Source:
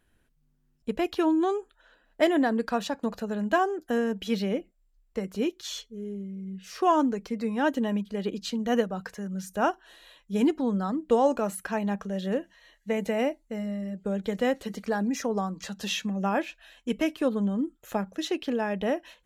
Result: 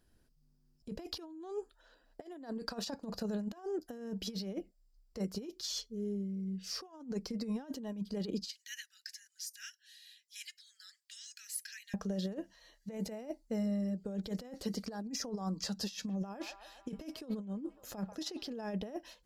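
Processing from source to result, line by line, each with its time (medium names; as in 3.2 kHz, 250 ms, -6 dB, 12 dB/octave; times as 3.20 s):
1.07–2.92 s: peaking EQ 170 Hz -5.5 dB
8.48–11.94 s: steep high-pass 1.7 kHz 72 dB/octave
15.96–18.49 s: feedback echo behind a band-pass 137 ms, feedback 64%, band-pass 1.4 kHz, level -19.5 dB
whole clip: peaking EQ 4.9 kHz +14.5 dB 0.47 oct; compressor with a negative ratio -31 dBFS, ratio -0.5; peaking EQ 2.4 kHz -8.5 dB 2.3 oct; trim -5.5 dB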